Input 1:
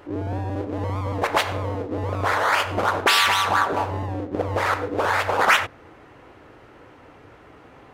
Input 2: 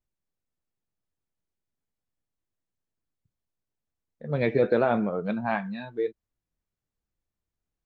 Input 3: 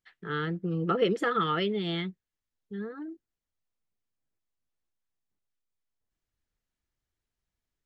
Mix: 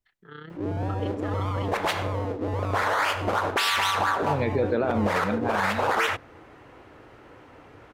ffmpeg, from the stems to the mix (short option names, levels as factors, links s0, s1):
-filter_complex "[0:a]adelay=500,volume=0.841[s0];[1:a]volume=1.12[s1];[2:a]tremolo=f=31:d=0.667,volume=0.376[s2];[s0][s1][s2]amix=inputs=3:normalize=0,alimiter=limit=0.188:level=0:latency=1:release=39"